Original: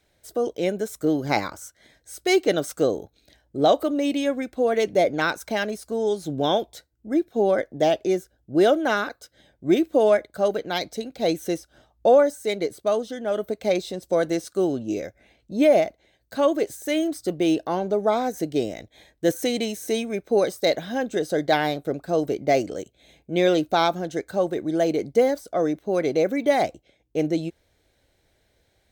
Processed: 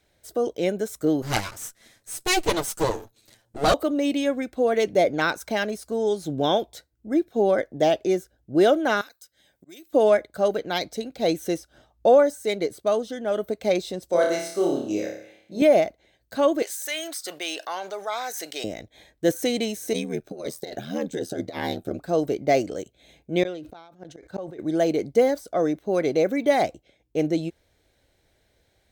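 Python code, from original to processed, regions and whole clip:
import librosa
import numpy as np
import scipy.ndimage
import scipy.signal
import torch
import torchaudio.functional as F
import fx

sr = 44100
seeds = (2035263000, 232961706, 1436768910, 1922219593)

y = fx.chain(x, sr, fx.lower_of_two(delay_ms=9.0),
    fx.peak_eq(hz=10000.0, db=9.0, octaves=1.6), at=(1.22, 3.74))
y = fx.chain(y, sr, fx.pre_emphasis(coefficient=0.9),
    fx.auto_swell(attack_ms=459.0),
    fx.band_squash(depth_pct=100), at=(9.01, 9.93))
y = fx.chain(y, sr, fx.highpass(hz=370.0, slope=6),
    fx.room_flutter(wall_m=4.9, rt60_s=0.62), at=(14.1, 15.62))
y = fx.chain(y, sr, fx.highpass(hz=1200.0, slope=12),
    fx.env_flatten(amount_pct=50), at=(16.62, 18.64))
y = fx.chain(y, sr, fx.ring_mod(carrier_hz=40.0),
    fx.over_compress(threshold_db=-26.0, ratio=-0.5),
    fx.notch_cascade(direction='falling', hz=1.9), at=(19.93, 21.99))
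y = fx.chain(y, sr, fx.high_shelf(hz=7100.0, db=-10.0),
    fx.gate_flip(shuts_db=-19.0, range_db=-32),
    fx.sustainer(db_per_s=57.0), at=(23.43, 24.59))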